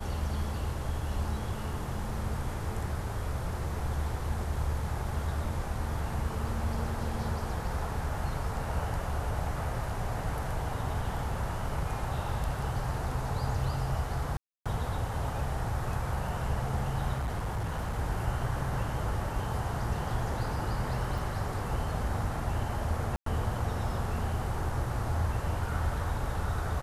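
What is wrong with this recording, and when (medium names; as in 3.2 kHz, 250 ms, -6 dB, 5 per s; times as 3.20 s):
14.37–14.66 s: dropout 286 ms
17.15–17.99 s: clipped -28.5 dBFS
21.18 s: dropout 3.6 ms
23.16–23.26 s: dropout 103 ms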